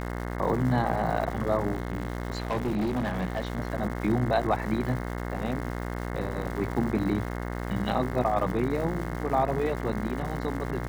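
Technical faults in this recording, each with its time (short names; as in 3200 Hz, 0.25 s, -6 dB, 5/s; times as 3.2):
buzz 60 Hz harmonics 36 -33 dBFS
crackle 330/s -36 dBFS
1.73–3.6 clipped -24 dBFS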